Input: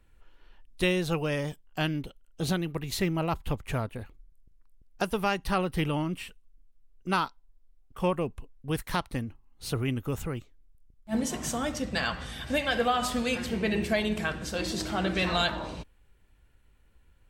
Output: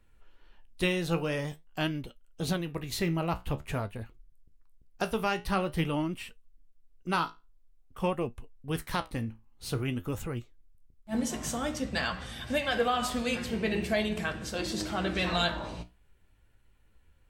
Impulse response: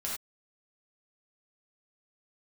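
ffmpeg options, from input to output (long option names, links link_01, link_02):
-af "flanger=delay=8.4:depth=9.6:regen=62:speed=0.48:shape=sinusoidal,volume=2.5dB"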